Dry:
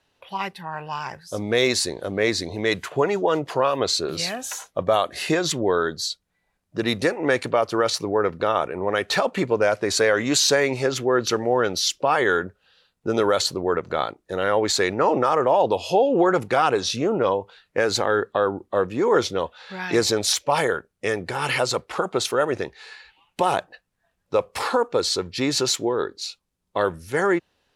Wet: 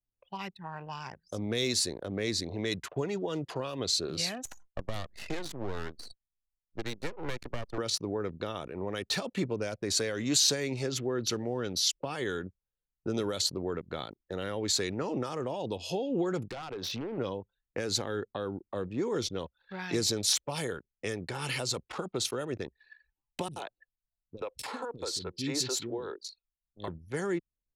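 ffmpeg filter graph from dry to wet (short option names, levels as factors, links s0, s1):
-filter_complex "[0:a]asettb=1/sr,asplit=3[s0][s1][s2];[s0]atrim=end=4.454[s3];[s1]atrim=start=4.45:end=7.78,asetpts=PTS-STARTPTS,afade=t=in:d=0.004:c=qsin,afade=t=out:st=3.326:d=0.004:c=qsin,acrossover=split=290|2200[s4][s5][s6];[s4]acompressor=threshold=0.00891:ratio=4[s7];[s5]acompressor=threshold=0.1:ratio=4[s8];[s6]acompressor=threshold=0.0224:ratio=4[s9];[s7][s8][s9]amix=inputs=3:normalize=0,aeval=exprs='max(val(0),0)':c=same[s10];[s2]atrim=start=7.776[s11];[s3][s10]acrossfade=d=0.004:c1=hsin:c2=qsin[s12];[s12][s11]acrossfade=d=0.004:c1=qsin:c2=hsin,asettb=1/sr,asplit=3[s13][s14][s15];[s13]atrim=end=16.444[s16];[s14]atrim=start=16.44:end=17.18,asetpts=PTS-STARTPTS,afade=t=in:d=0.004:c=qsin,afade=t=out:st=0.736:d=0.004:c=qsin,lowpass=4800,acompressor=threshold=0.0501:ratio=5:attack=3.2:release=140:knee=1:detection=peak,aeval=exprs='0.0596*(abs(mod(val(0)/0.0596+3,4)-2)-1)':c=same[s17];[s15]atrim=start=17.176[s18];[s16][s17]acrossfade=d=0.004:c1=hsin:c2=qsin[s19];[s19][s18]acrossfade=d=0.004:c1=qsin:c2=hsin,asettb=1/sr,asplit=3[s20][s21][s22];[s20]atrim=end=23.484[s23];[s21]atrim=start=23.48:end=26.88,asetpts=PTS-STARTPTS,afade=t=in:d=0.004:c=qsin,afade=t=out:st=3.396:d=0.004:c=qsin,bandreject=f=1200:w=14,acrossover=split=780[s24][s25];[s24]aeval=exprs='val(0)*(1-0.5/2+0.5/2*cos(2*PI*5*n/s))':c=same[s26];[s25]aeval=exprs='val(0)*(1-0.5/2-0.5/2*cos(2*PI*5*n/s))':c=same[s27];[s26][s27]amix=inputs=2:normalize=0,acrossover=split=300|3300[s28][s29][s30];[s30]adelay=30[s31];[s29]adelay=80[s32];[s28][s32][s31]amix=inputs=3:normalize=0,atrim=end_sample=149940[s33];[s22]atrim=start=26.876[s34];[s23][s33]acrossfade=d=0.004:c1=hsin:c2=qsin[s35];[s35][s34]acrossfade=d=0.004:c1=qsin:c2=hsin,anlmdn=3.98,acrossover=split=320|3000[s36][s37][s38];[s37]acompressor=threshold=0.02:ratio=6[s39];[s36][s39][s38]amix=inputs=3:normalize=0,volume=0.596"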